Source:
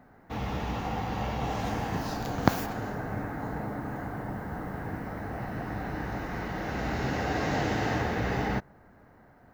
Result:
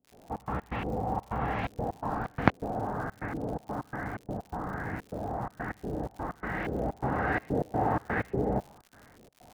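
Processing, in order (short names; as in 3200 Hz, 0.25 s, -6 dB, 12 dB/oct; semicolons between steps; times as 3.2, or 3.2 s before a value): LFO low-pass saw up 1.2 Hz 400–2600 Hz; step gate ".xx.x.xxxx.xxx.x" 126 bpm -24 dB; crackle 140/s -41 dBFS; gain -1 dB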